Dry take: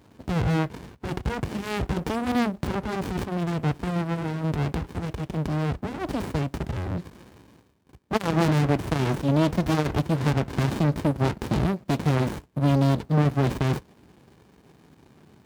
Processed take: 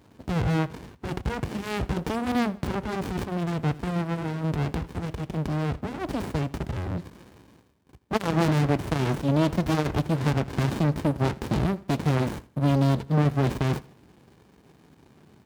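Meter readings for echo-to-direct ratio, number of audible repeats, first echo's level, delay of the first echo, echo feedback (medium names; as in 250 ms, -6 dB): -20.5 dB, 2, -21.0 dB, 81 ms, 36%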